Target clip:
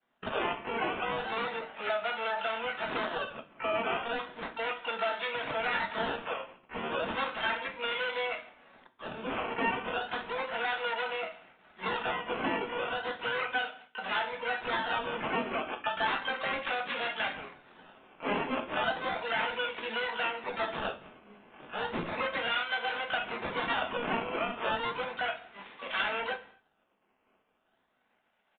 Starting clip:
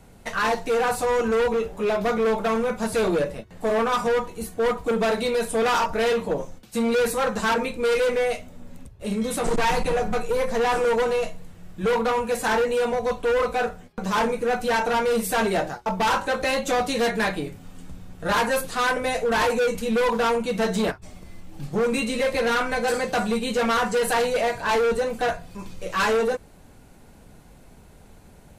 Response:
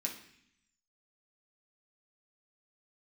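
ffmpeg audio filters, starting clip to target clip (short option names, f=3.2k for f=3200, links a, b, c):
-filter_complex "[0:a]agate=range=-33dB:threshold=-37dB:ratio=3:detection=peak,highpass=790,aecho=1:1:1.4:0.68,acompressor=threshold=-31dB:ratio=2.5,acrusher=samples=16:mix=1:aa=0.000001:lfo=1:lforange=16:lforate=0.34,asplit=2[a][b];[b]asetrate=88200,aresample=44100,atempo=0.5,volume=-5dB[c];[a][c]amix=inputs=2:normalize=0,aresample=8000,aresample=44100,asplit=2[d][e];[1:a]atrim=start_sample=2205,afade=t=out:st=0.32:d=0.01,atrim=end_sample=14553[f];[e][f]afir=irnorm=-1:irlink=0,volume=-5.5dB[g];[d][g]amix=inputs=2:normalize=0,volume=-3dB"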